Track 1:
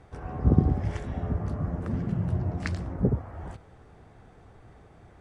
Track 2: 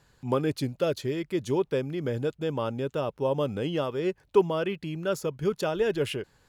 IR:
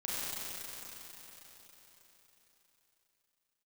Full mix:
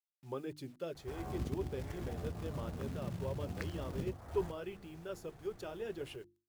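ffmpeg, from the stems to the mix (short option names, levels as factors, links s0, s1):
-filter_complex "[0:a]acompressor=threshold=0.0224:ratio=4,acrusher=bits=4:mode=log:mix=0:aa=0.000001,adelay=950,volume=0.562[s0];[1:a]equalizer=f=360:w=4:g=3.5,flanger=delay=1.7:depth=4.2:regen=-45:speed=1.8:shape=sinusoidal,acrusher=bits=8:mix=0:aa=0.000001,volume=0.237[s1];[s0][s1]amix=inputs=2:normalize=0,bandreject=f=50:t=h:w=6,bandreject=f=100:t=h:w=6,bandreject=f=150:t=h:w=6,bandreject=f=200:t=h:w=6,bandreject=f=250:t=h:w=6,bandreject=f=300:t=h:w=6,bandreject=f=350:t=h:w=6"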